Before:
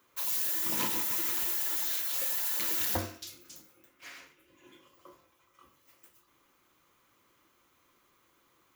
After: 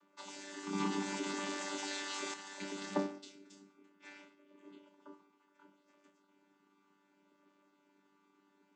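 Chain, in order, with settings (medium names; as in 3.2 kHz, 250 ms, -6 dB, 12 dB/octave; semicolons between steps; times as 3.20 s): vocoder on a held chord bare fifth, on G3; 0.75–2.34 s: level flattener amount 50%; trim -2 dB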